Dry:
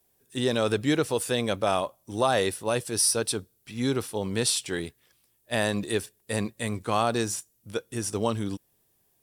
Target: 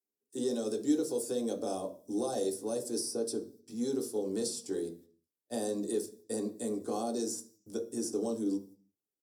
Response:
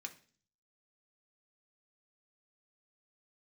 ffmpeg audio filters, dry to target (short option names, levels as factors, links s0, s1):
-filter_complex "[0:a]agate=range=0.0794:threshold=0.002:ratio=16:detection=peak,firequalizer=gain_entry='entry(170,0);entry(240,9);entry(440,9);entry(1000,-8);entry(2400,-23);entry(4800,1)':delay=0.05:min_phase=1,acrossover=split=270|1200|2900[s0][s1][s2][s3];[s0]acompressor=threshold=0.0112:ratio=4[s4];[s1]acompressor=threshold=0.0562:ratio=4[s5];[s2]acompressor=threshold=0.002:ratio=4[s6];[s3]acompressor=threshold=0.0224:ratio=4[s7];[s4][s5][s6][s7]amix=inputs=4:normalize=0[s8];[1:a]atrim=start_sample=2205,afade=t=out:st=0.43:d=0.01,atrim=end_sample=19404[s9];[s8][s9]afir=irnorm=-1:irlink=0"